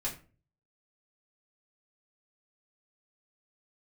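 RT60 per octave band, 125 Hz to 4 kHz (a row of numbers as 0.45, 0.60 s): 0.65, 0.50, 0.40, 0.35, 0.30, 0.25 s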